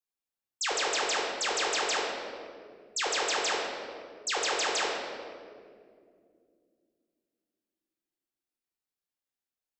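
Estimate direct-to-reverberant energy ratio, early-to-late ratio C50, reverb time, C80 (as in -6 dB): -3.0 dB, 1.0 dB, 2.3 s, 3.0 dB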